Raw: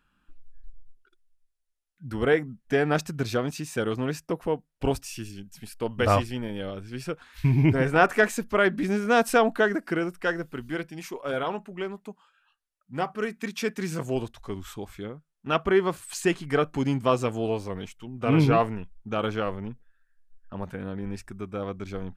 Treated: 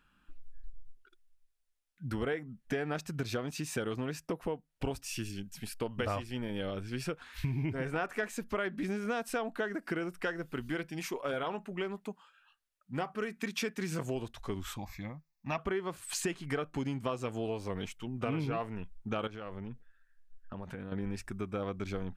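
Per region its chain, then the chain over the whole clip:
0:14.77–0:15.58: high-shelf EQ 8,000 Hz +6.5 dB + phaser with its sweep stopped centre 2,100 Hz, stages 8
0:19.27–0:20.92: high-shelf EQ 9,500 Hz −6 dB + downward compressor 16 to 1, threshold −37 dBFS
whole clip: downward compressor 6 to 1, threshold −32 dBFS; parametric band 2,500 Hz +2 dB 1.5 octaves

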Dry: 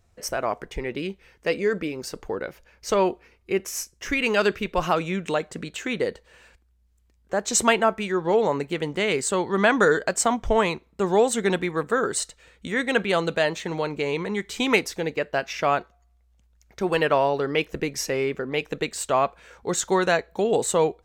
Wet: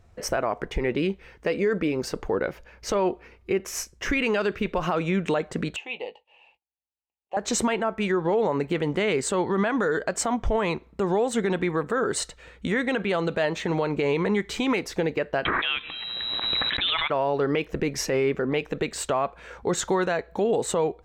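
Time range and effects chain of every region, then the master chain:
0:05.76–0:07.37: noise gate −57 dBFS, range −18 dB + pair of resonant band-passes 1,500 Hz, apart 1.7 octaves + double-tracking delay 18 ms −11.5 dB
0:15.45–0:17.10: tilt shelving filter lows −7 dB, about 820 Hz + voice inversion scrambler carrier 3,900 Hz + background raised ahead of every attack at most 20 dB per second
whole clip: high-shelf EQ 4,100 Hz −11.5 dB; downward compressor 3 to 1, threshold −27 dBFS; brickwall limiter −22.5 dBFS; level +7.5 dB

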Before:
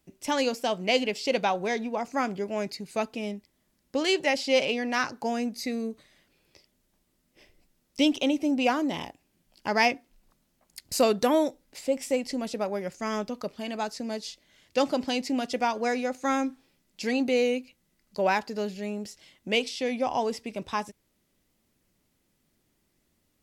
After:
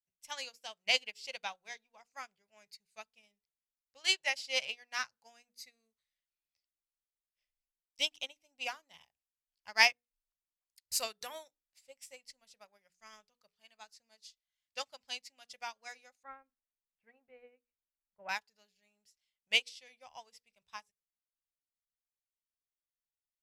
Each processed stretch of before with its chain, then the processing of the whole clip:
0:16.23–0:18.29: low-pass filter 1,800 Hz 24 dB per octave + tilt shelving filter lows +3 dB, about 710 Hz
whole clip: guitar amp tone stack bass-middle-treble 10-0-10; mains-hum notches 60/120/180/240/300/360/420/480 Hz; expander for the loud parts 2.5 to 1, over −48 dBFS; level +6 dB

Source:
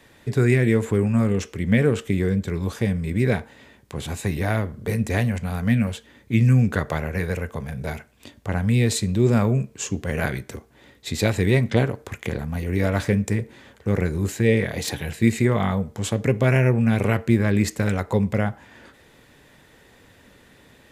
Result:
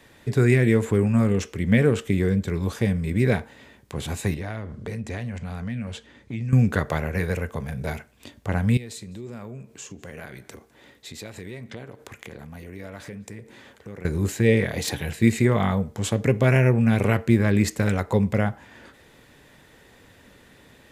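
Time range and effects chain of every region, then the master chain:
0:04.34–0:06.53: low-pass filter 7,500 Hz + downward compressor 3 to 1, threshold −30 dBFS
0:08.77–0:14.05: low-shelf EQ 120 Hz −9.5 dB + downward compressor 3 to 1, threshold −39 dBFS + single-tap delay 204 ms −24 dB
whole clip: no processing

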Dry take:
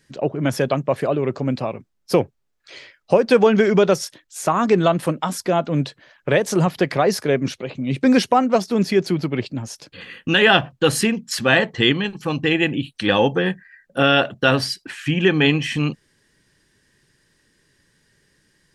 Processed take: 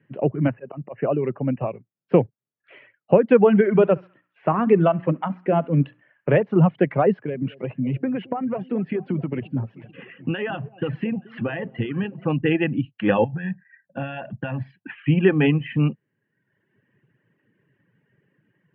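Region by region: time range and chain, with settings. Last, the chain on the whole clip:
0:00.47–0:01.61: low-shelf EQ 180 Hz −6 dB + volume swells 154 ms + linear-phase brick-wall low-pass 3,000 Hz
0:03.37–0:06.43: high-shelf EQ 8,900 Hz −3.5 dB + mains-hum notches 60/120/180/240/300/360 Hz + feedback echo with a band-pass in the loop 67 ms, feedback 54%, band-pass 1,600 Hz, level −11 dB
0:07.12–0:12.26: downward compressor 16 to 1, threshold −20 dBFS + delay that swaps between a low-pass and a high-pass 219 ms, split 890 Hz, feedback 66%, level −12 dB
0:13.24–0:14.92: downward compressor 12 to 1, threshold −23 dBFS + comb filter 1.2 ms, depth 70%
whole clip: Chebyshev band-pass filter 110–2,900 Hz, order 5; reverb reduction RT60 0.95 s; spectral tilt −2.5 dB per octave; level −2.5 dB

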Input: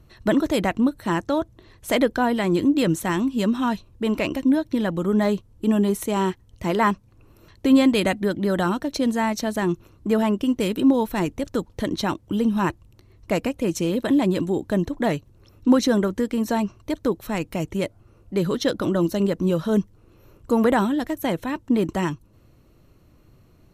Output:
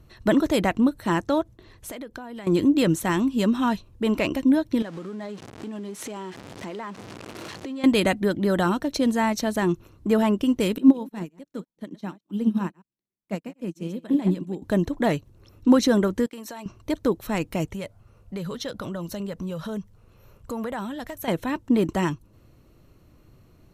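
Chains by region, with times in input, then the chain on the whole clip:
0:01.41–0:02.47: noise gate with hold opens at −39 dBFS, closes at −49 dBFS + downward compressor 10 to 1, threshold −33 dBFS
0:04.82–0:07.84: converter with a step at zero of −29.5 dBFS + band-pass filter 190–7,700 Hz + downward compressor, threshold −32 dBFS
0:10.78–0:14.62: delay that plays each chunk backwards 102 ms, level −10 dB + low shelf with overshoot 120 Hz −13 dB, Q 3 + expander for the loud parts 2.5 to 1, over −35 dBFS
0:16.26–0:16.66: downward expander −33 dBFS + high-pass filter 830 Hz 6 dB per octave + downward compressor, threshold −34 dBFS
0:17.67–0:21.28: parametric band 320 Hz −12 dB 0.48 octaves + downward compressor 3 to 1, threshold −30 dBFS
whole clip: no processing

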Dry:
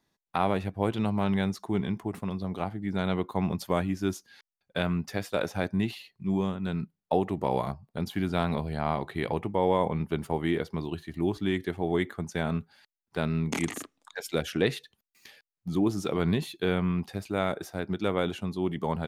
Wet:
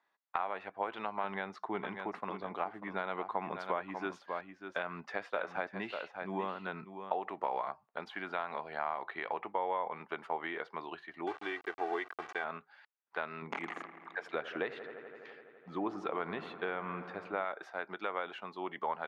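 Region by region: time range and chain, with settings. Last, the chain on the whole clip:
0:01.24–0:07.12: low-shelf EQ 420 Hz +7.5 dB + single-tap delay 593 ms −10.5 dB
0:11.27–0:12.44: hold until the input has moved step −36.5 dBFS + comb filter 2.6 ms
0:13.42–0:17.45: spectral tilt −2 dB per octave + delay with a low-pass on its return 84 ms, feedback 83%, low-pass 2,200 Hz, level −15.5 dB
whole clip: high-pass filter 1,000 Hz 12 dB per octave; downward compressor 6 to 1, threshold −36 dBFS; low-pass filter 1,600 Hz 12 dB per octave; level +6.5 dB

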